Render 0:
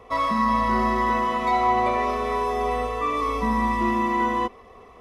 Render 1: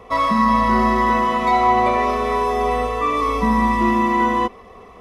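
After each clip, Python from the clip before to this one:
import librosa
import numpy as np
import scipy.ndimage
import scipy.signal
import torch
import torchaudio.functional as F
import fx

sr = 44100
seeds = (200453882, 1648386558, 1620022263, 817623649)

y = fx.peak_eq(x, sr, hz=190.0, db=5.5, octaves=0.29)
y = y * librosa.db_to_amplitude(5.0)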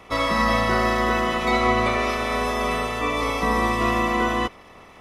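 y = fx.spec_clip(x, sr, under_db=17)
y = y * librosa.db_to_amplitude(-4.0)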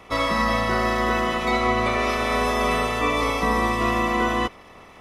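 y = fx.rider(x, sr, range_db=10, speed_s=0.5)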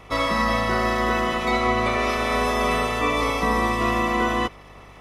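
y = fx.dmg_buzz(x, sr, base_hz=50.0, harmonics=3, level_db=-50.0, tilt_db=-4, odd_only=False)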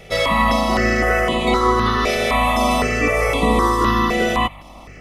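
y = fx.phaser_held(x, sr, hz=3.9, low_hz=280.0, high_hz=5500.0)
y = y * librosa.db_to_amplitude(8.0)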